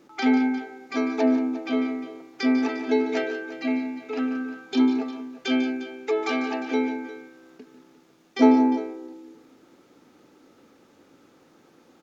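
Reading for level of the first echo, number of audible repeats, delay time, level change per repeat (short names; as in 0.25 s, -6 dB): -12.0 dB, 3, 0.147 s, no steady repeat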